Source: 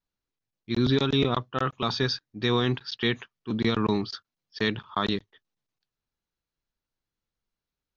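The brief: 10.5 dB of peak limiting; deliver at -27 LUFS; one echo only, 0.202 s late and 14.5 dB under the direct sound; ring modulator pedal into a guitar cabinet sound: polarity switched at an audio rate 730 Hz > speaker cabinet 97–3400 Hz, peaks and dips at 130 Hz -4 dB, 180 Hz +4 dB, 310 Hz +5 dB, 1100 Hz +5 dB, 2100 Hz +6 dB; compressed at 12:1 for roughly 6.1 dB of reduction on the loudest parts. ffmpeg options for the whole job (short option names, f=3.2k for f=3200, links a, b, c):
-af "acompressor=threshold=-25dB:ratio=12,alimiter=limit=-23.5dB:level=0:latency=1,aecho=1:1:202:0.188,aeval=exprs='val(0)*sgn(sin(2*PI*730*n/s))':c=same,highpass=97,equalizer=f=130:t=q:w=4:g=-4,equalizer=f=180:t=q:w=4:g=4,equalizer=f=310:t=q:w=4:g=5,equalizer=f=1.1k:t=q:w=4:g=5,equalizer=f=2.1k:t=q:w=4:g=6,lowpass=f=3.4k:w=0.5412,lowpass=f=3.4k:w=1.3066,volume=6dB"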